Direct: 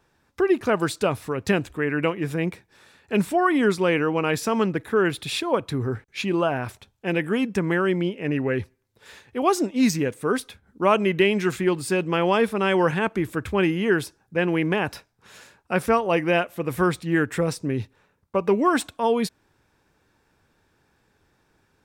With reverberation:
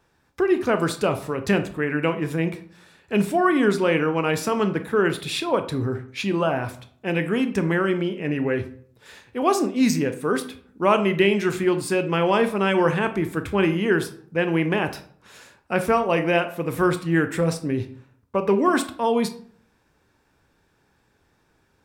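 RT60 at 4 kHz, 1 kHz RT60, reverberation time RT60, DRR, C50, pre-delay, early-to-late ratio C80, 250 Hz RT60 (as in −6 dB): 0.35 s, 0.50 s, 0.55 s, 8.5 dB, 12.5 dB, 18 ms, 16.5 dB, 0.65 s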